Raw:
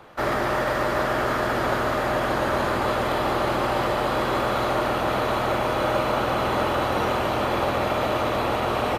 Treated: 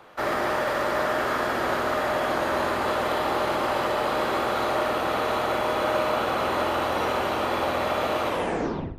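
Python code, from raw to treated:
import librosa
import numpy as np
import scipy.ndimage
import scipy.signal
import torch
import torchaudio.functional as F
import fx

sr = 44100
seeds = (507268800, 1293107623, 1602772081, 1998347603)

y = fx.tape_stop_end(x, sr, length_s=0.72)
y = fx.low_shelf(y, sr, hz=190.0, db=-9.0)
y = fx.echo_feedback(y, sr, ms=60, feedback_pct=39, wet_db=-9)
y = y * 10.0 ** (-1.5 / 20.0)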